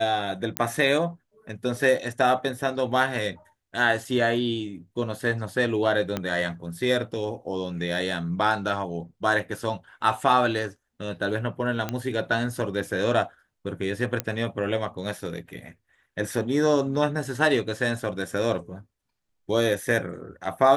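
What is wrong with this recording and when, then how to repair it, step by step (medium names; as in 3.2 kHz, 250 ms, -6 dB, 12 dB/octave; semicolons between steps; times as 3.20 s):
0.57 s: pop -6 dBFS
6.17 s: pop -12 dBFS
11.89 s: pop -13 dBFS
14.20 s: pop -9 dBFS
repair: de-click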